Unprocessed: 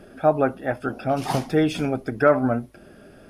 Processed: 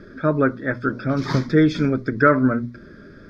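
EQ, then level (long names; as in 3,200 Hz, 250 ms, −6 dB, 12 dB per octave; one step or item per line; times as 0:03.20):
Bessel low-pass filter 4,200 Hz, order 2
mains-hum notches 60/120/180/240 Hz
phaser with its sweep stopped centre 2,800 Hz, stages 6
+7.0 dB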